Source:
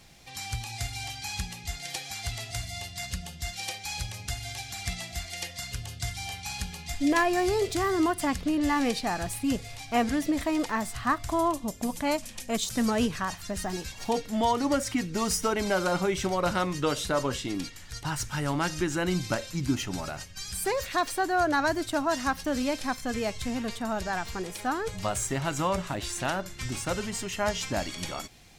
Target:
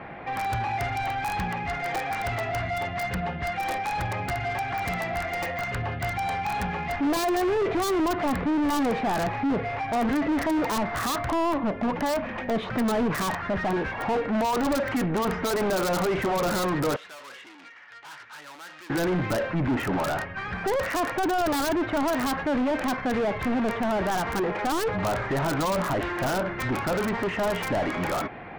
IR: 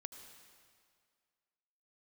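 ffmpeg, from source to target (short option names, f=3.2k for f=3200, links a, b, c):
-filter_complex "[0:a]lowpass=f=2k:w=0.5412,lowpass=f=2k:w=1.3066,asplit=2[a][b];[b]highpass=f=720:p=1,volume=37dB,asoftclip=type=tanh:threshold=-13dB[c];[a][c]amix=inputs=2:normalize=0,lowpass=f=1.1k:p=1,volume=-6dB,asettb=1/sr,asplit=3[d][e][f];[d]atrim=end=16.964[g];[e]atrim=start=16.96:end=18.9,asetpts=PTS-STARTPTS,afade=t=in:d=0.004:c=qsin,afade=t=out:st=1.936:d=0.004:c=qsin,aderivative[h];[f]atrim=start=18.896[i];[g][h]acrossfade=d=0.004:c1=hsin:c2=qsin[j];[j][i]acrossfade=d=0.004:c1=qsin:c2=hsin,acrossover=split=970[k][l];[l]aeval=exprs='(mod(12.6*val(0)+1,2)-1)/12.6':c=same[m];[k][m]amix=inputs=2:normalize=0,volume=-4dB"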